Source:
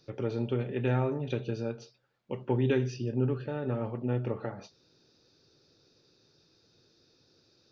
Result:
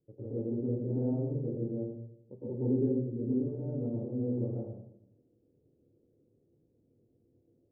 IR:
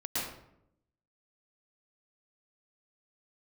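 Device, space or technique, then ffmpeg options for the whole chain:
next room: -filter_complex "[0:a]lowpass=frequency=530:width=0.5412,lowpass=frequency=530:width=1.3066[link_01];[1:a]atrim=start_sample=2205[link_02];[link_01][link_02]afir=irnorm=-1:irlink=0,volume=-7.5dB"

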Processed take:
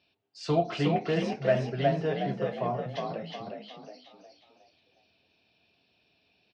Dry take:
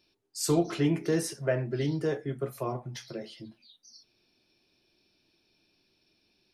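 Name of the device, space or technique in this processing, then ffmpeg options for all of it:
frequency-shifting delay pedal into a guitar cabinet: -filter_complex "[0:a]asplit=6[link_01][link_02][link_03][link_04][link_05][link_06];[link_02]adelay=363,afreqshift=42,volume=-4dB[link_07];[link_03]adelay=726,afreqshift=84,volume=-12dB[link_08];[link_04]adelay=1089,afreqshift=126,volume=-19.9dB[link_09];[link_05]adelay=1452,afreqshift=168,volume=-27.9dB[link_10];[link_06]adelay=1815,afreqshift=210,volume=-35.8dB[link_11];[link_01][link_07][link_08][link_09][link_10][link_11]amix=inputs=6:normalize=0,highpass=78,equalizer=frequency=83:width_type=q:width=4:gain=7,equalizer=frequency=350:width_type=q:width=4:gain=-9,equalizer=frequency=690:width_type=q:width=4:gain=8,equalizer=frequency=2800:width_type=q:width=4:gain=6,lowpass=frequency=4200:width=0.5412,lowpass=frequency=4200:width=1.3066"

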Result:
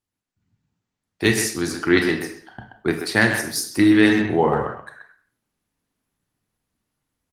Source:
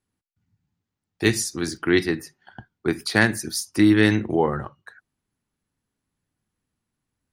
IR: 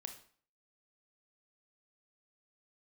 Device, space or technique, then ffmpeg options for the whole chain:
speakerphone in a meeting room: -filter_complex "[0:a]lowshelf=frequency=440:gain=-2.5[link_01];[1:a]atrim=start_sample=2205[link_02];[link_01][link_02]afir=irnorm=-1:irlink=0,asplit=2[link_03][link_04];[link_04]adelay=130,highpass=300,lowpass=3400,asoftclip=type=hard:threshold=-17.5dB,volume=-6dB[link_05];[link_03][link_05]amix=inputs=2:normalize=0,dynaudnorm=framelen=120:gausssize=5:maxgain=9dB" -ar 48000 -c:a libopus -b:a 20k

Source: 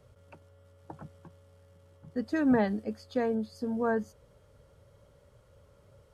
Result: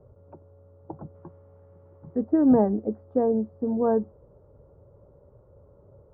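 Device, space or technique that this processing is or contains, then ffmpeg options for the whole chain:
under water: -filter_complex "[0:a]asplit=3[link_01][link_02][link_03];[link_01]afade=type=out:start_time=1.14:duration=0.02[link_04];[link_02]equalizer=frequency=2700:width_type=o:width=1.9:gain=13.5,afade=type=in:start_time=1.14:duration=0.02,afade=type=out:start_time=2.16:duration=0.02[link_05];[link_03]afade=type=in:start_time=2.16:duration=0.02[link_06];[link_04][link_05][link_06]amix=inputs=3:normalize=0,lowpass=frequency=980:width=0.5412,lowpass=frequency=980:width=1.3066,equalizer=frequency=360:width_type=o:width=0.43:gain=7,volume=5dB"

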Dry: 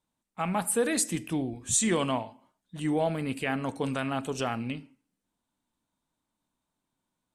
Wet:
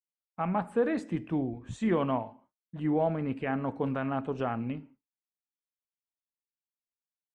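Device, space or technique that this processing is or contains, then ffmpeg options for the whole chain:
hearing-loss simulation: -af "lowpass=1500,agate=range=-33dB:threshold=-51dB:ratio=3:detection=peak"

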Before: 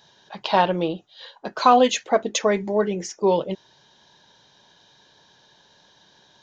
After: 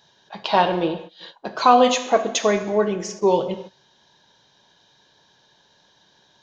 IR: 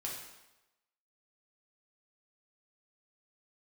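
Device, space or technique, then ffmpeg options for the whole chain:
keyed gated reverb: -filter_complex "[0:a]asplit=3[link_01][link_02][link_03];[1:a]atrim=start_sample=2205[link_04];[link_02][link_04]afir=irnorm=-1:irlink=0[link_05];[link_03]apad=whole_len=283137[link_06];[link_05][link_06]sidechaingate=range=-24dB:threshold=-42dB:ratio=16:detection=peak,volume=-2.5dB[link_07];[link_01][link_07]amix=inputs=2:normalize=0,volume=-2.5dB"

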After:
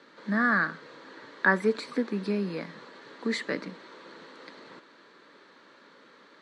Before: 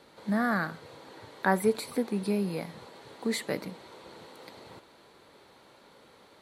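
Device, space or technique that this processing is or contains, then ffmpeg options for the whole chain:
television speaker: -af "highpass=frequency=170:width=0.5412,highpass=frequency=170:width=1.3066,equalizer=frequency=280:width_type=q:width=4:gain=4,equalizer=frequency=760:width_type=q:width=4:gain=-8,equalizer=frequency=1200:width_type=q:width=4:gain=5,equalizer=frequency=1700:width_type=q:width=4:gain=9,lowpass=frequency=6600:width=0.5412,lowpass=frequency=6600:width=1.3066"

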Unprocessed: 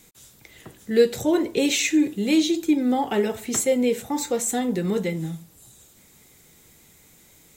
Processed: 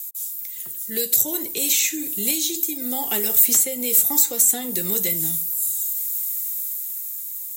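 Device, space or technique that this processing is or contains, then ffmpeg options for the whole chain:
FM broadcast chain: -filter_complex "[0:a]highpass=68,dynaudnorm=framelen=260:gausssize=11:maxgain=7.5dB,acrossover=split=180|3900[link_01][link_02][link_03];[link_01]acompressor=threshold=-36dB:ratio=4[link_04];[link_02]acompressor=threshold=-19dB:ratio=4[link_05];[link_03]acompressor=threshold=-32dB:ratio=4[link_06];[link_04][link_05][link_06]amix=inputs=3:normalize=0,aemphasis=mode=production:type=75fm,alimiter=limit=-9.5dB:level=0:latency=1:release=414,asoftclip=type=hard:threshold=-13dB,lowpass=frequency=15000:width=0.5412,lowpass=frequency=15000:width=1.3066,aemphasis=mode=production:type=75fm,volume=-7.5dB"

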